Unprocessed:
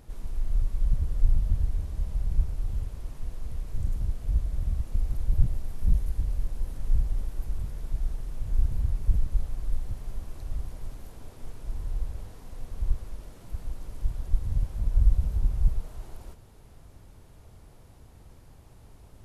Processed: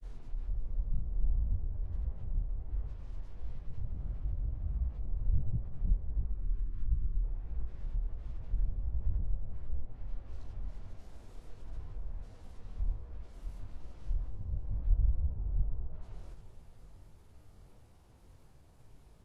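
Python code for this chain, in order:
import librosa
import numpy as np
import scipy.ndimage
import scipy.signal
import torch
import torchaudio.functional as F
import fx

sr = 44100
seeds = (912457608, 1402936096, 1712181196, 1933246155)

y = fx.env_lowpass_down(x, sr, base_hz=870.0, full_db=-21.0)
y = fx.spec_box(y, sr, start_s=6.31, length_s=0.88, low_hz=410.0, high_hz=1000.0, gain_db=-26)
y = fx.granulator(y, sr, seeds[0], grain_ms=100.0, per_s=20.0, spray_ms=100.0, spread_st=0)
y = fx.echo_heads(y, sr, ms=112, heads='second and third', feedback_pct=63, wet_db=-14)
y = fx.detune_double(y, sr, cents=50)
y = y * 10.0 ** (-3.0 / 20.0)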